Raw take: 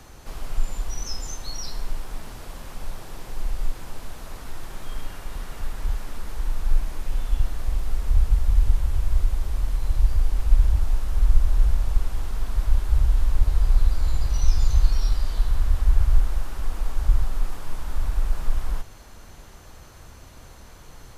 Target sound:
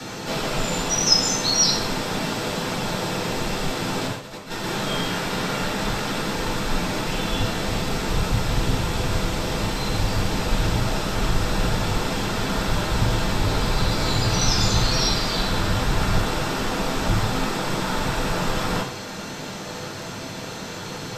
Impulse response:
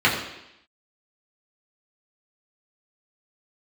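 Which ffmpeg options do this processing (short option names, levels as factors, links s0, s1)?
-filter_complex "[0:a]asettb=1/sr,asplit=3[s0][s1][s2];[s0]atrim=end=4.074[s3];[s1]atrim=start=4.07:end=4.64,asetpts=PTS-STARTPTS,afade=t=in:d=0.004:c=qsin,afade=t=out:st=0.566:d=0.004:c=qsin,agate=range=0.0224:threshold=0.0631:ratio=3:detection=peak[s4];[s2]atrim=start=4.636[s5];[s3][s4]acrossfade=d=0.004:c1=hsin:c2=qsin[s6];[s6][s5]acrossfade=d=0.004:c1=qsin:c2=hsin[s7];[1:a]atrim=start_sample=2205,asetrate=79380,aresample=44100[s8];[s7][s8]afir=irnorm=-1:irlink=0,volume=1.41"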